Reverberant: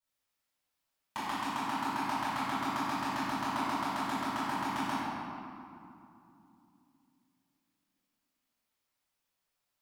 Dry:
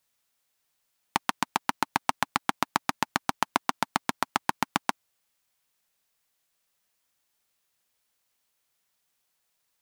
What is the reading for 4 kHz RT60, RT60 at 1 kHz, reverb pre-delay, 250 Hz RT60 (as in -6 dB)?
1.5 s, 2.7 s, 3 ms, 4.0 s